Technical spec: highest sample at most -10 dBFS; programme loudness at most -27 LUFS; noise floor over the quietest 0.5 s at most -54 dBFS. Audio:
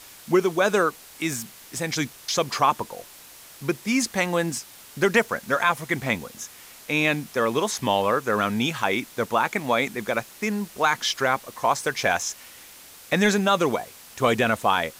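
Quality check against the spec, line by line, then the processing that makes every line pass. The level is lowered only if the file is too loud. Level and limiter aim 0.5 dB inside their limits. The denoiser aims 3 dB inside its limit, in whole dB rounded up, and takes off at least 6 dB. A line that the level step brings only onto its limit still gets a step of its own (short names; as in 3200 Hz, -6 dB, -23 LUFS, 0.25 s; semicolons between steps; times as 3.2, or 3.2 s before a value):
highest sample -8.0 dBFS: fail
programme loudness -24.0 LUFS: fail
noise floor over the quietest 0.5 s -46 dBFS: fail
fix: denoiser 8 dB, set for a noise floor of -46 dBFS; gain -3.5 dB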